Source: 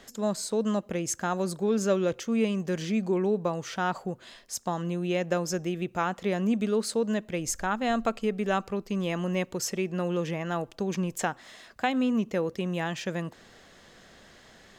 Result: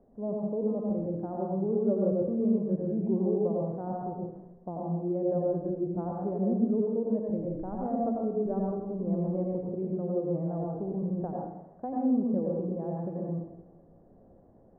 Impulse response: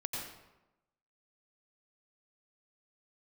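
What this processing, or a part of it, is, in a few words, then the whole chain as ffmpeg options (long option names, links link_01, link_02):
next room: -filter_complex "[0:a]lowpass=frequency=690:width=0.5412,lowpass=frequency=690:width=1.3066[link_01];[1:a]atrim=start_sample=2205[link_02];[link_01][link_02]afir=irnorm=-1:irlink=0,asettb=1/sr,asplit=3[link_03][link_04][link_05];[link_03]atrim=end=7.864[link_06];[link_04]atrim=start=7.86:end=8.46,asetpts=PTS-STARTPTS,afade=type=in:duration=0.004:curve=qsin,afade=type=out:start_time=0.596:duration=0.004:curve=qsin,highpass=53[link_07];[link_05]atrim=start=8.456[link_08];[link_06][link_07]acrossfade=duration=0.004:curve1=hsin:curve2=qsin[link_09];[link_09][link_08]acrossfade=duration=0.004:curve1=qsin:curve2=hsin,volume=-3dB"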